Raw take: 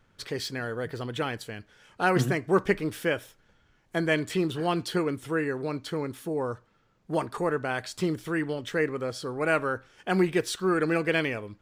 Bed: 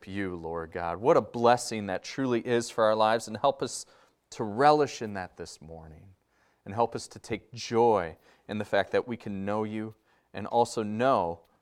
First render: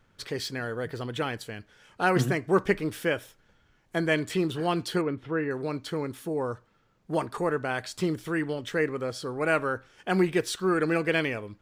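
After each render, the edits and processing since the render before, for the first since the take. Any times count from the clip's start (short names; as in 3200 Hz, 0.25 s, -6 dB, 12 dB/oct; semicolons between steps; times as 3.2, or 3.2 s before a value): 5.01–5.51 air absorption 290 m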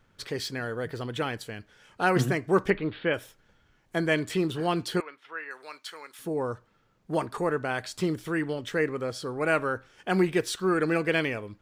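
2.7–3.14 steep low-pass 4200 Hz 72 dB/oct; 5–6.19 HPF 1200 Hz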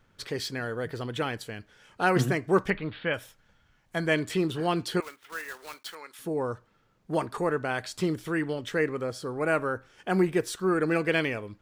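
2.61–4.07 bell 370 Hz -7.5 dB; 5.02–5.97 block floating point 3-bit; 9.01–10.91 dynamic EQ 3400 Hz, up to -6 dB, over -45 dBFS, Q 0.83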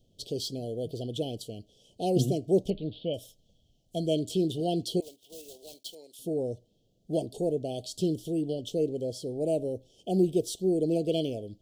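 Chebyshev band-stop 690–3100 Hz, order 4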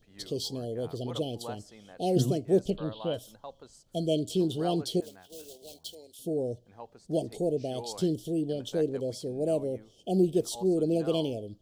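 add bed -19.5 dB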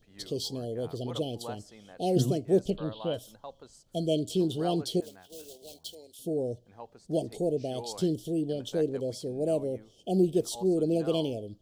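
nothing audible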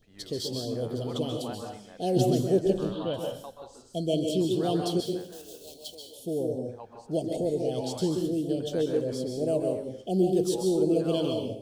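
plate-style reverb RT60 0.54 s, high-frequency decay 0.95×, pre-delay 0.12 s, DRR 2 dB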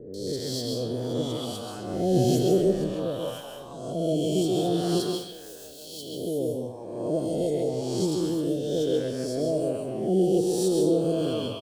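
spectral swells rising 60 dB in 1.17 s; three bands offset in time lows, highs, mids 0.14/0.27 s, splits 840/3500 Hz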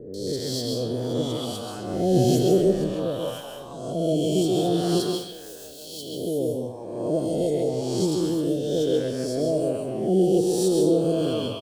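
gain +2.5 dB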